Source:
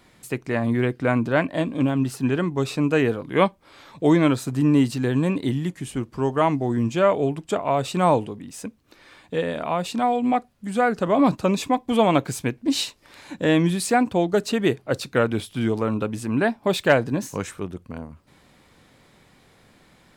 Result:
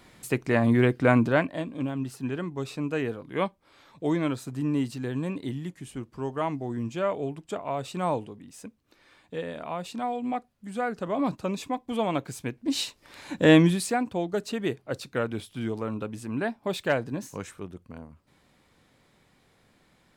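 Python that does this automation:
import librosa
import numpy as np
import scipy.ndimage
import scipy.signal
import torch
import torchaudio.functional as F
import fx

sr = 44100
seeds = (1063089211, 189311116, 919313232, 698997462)

y = fx.gain(x, sr, db=fx.line((1.23, 1.0), (1.63, -9.0), (12.34, -9.0), (13.54, 3.0), (13.98, -8.0)))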